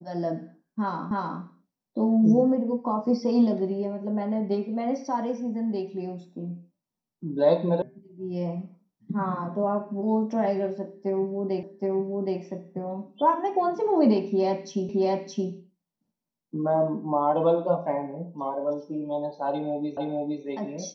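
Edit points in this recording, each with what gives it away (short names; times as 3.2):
1.11 repeat of the last 0.31 s
7.82 sound cut off
11.63 repeat of the last 0.77 s
14.89 repeat of the last 0.62 s
19.97 repeat of the last 0.46 s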